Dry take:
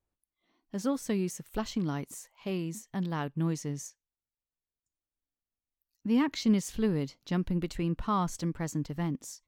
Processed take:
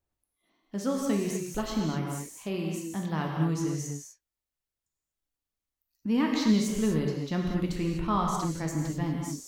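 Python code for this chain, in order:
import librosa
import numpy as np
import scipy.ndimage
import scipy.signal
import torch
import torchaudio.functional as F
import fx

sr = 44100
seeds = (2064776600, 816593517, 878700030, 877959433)

y = fx.rev_gated(x, sr, seeds[0], gate_ms=270, shape='flat', drr_db=-0.5)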